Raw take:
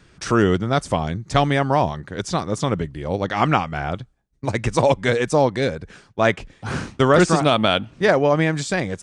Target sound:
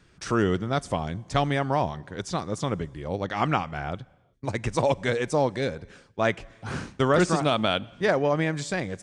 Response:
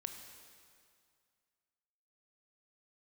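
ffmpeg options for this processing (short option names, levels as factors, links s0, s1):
-filter_complex "[0:a]asplit=2[s0][s1];[1:a]atrim=start_sample=2205,afade=t=out:st=0.45:d=0.01,atrim=end_sample=20286[s2];[s1][s2]afir=irnorm=-1:irlink=0,volume=0.211[s3];[s0][s3]amix=inputs=2:normalize=0,volume=0.422"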